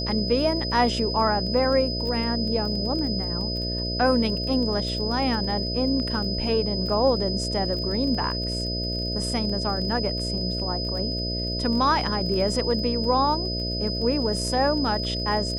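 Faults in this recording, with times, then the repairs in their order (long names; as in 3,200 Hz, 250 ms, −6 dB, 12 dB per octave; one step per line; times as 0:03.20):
mains buzz 60 Hz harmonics 11 −30 dBFS
surface crackle 22 per second −32 dBFS
whistle 5,000 Hz −29 dBFS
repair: click removal
hum removal 60 Hz, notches 11
notch filter 5,000 Hz, Q 30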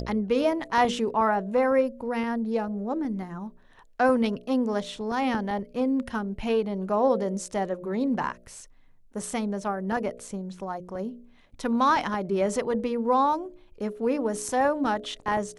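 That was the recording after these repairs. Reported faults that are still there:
none of them is left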